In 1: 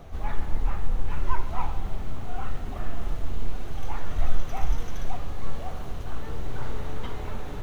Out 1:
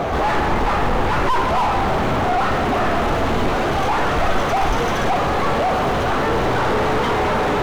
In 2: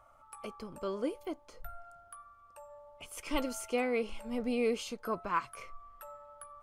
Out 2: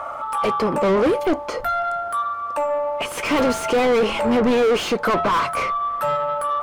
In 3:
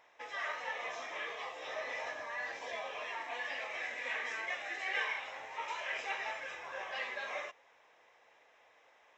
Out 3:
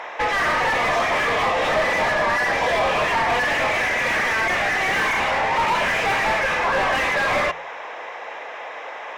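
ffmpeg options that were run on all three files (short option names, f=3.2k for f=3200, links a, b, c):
-filter_complex "[0:a]asplit=2[a][b];[b]highpass=f=720:p=1,volume=45dB,asoftclip=type=tanh:threshold=-7dB[c];[a][c]amix=inputs=2:normalize=0,lowpass=f=1.1k:p=1,volume=-6dB,bandreject=f=55.12:t=h:w=4,bandreject=f=110.24:t=h:w=4,bandreject=f=165.36:t=h:w=4,volume=-1.5dB"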